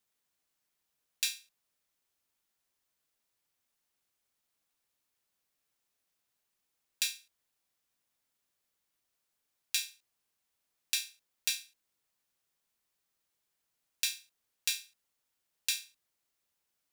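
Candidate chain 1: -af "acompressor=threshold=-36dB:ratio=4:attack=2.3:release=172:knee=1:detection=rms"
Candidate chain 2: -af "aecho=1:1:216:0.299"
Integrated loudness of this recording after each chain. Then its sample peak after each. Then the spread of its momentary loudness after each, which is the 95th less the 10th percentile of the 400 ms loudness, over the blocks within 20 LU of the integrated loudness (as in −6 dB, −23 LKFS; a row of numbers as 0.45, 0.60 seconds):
−46.0, −35.5 LKFS; −18.5, −9.0 dBFS; 10, 11 LU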